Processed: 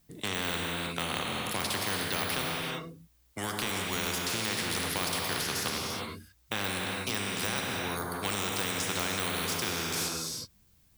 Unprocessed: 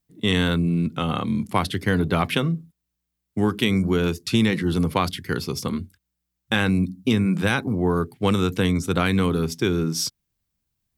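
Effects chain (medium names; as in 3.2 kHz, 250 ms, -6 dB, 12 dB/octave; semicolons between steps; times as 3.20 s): de-esser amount 85%; gated-style reverb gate 390 ms flat, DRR 2 dB; spectrum-flattening compressor 4:1; trim -5 dB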